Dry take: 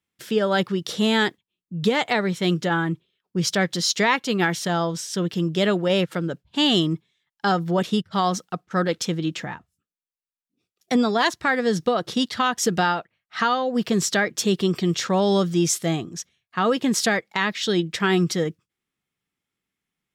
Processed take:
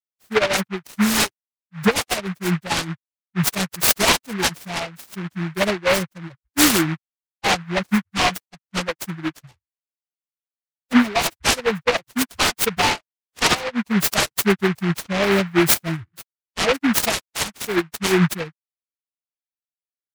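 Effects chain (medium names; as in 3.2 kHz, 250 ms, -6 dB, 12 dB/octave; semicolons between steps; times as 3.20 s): expander on every frequency bin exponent 3; treble shelf 5.7 kHz +6 dB; delay time shaken by noise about 1.5 kHz, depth 0.22 ms; trim +8.5 dB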